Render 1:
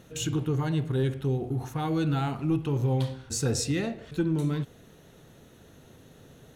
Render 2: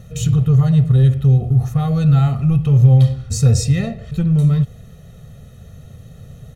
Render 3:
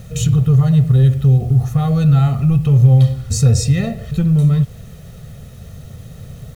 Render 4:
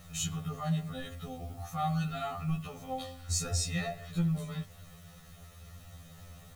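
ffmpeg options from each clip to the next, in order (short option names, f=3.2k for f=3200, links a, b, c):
-af "bass=f=250:g=14,treble=f=4k:g=2,aecho=1:1:1.6:0.92,volume=1dB"
-filter_complex "[0:a]asplit=2[a][b];[b]acompressor=threshold=-20dB:ratio=10,volume=-2dB[c];[a][c]amix=inputs=2:normalize=0,acrusher=bits=7:mix=0:aa=0.000001,volume=-1dB"
-af "lowshelf=f=610:t=q:w=1.5:g=-8.5,afftfilt=real='re*2*eq(mod(b,4),0)':imag='im*2*eq(mod(b,4),0)':win_size=2048:overlap=0.75,volume=-6.5dB"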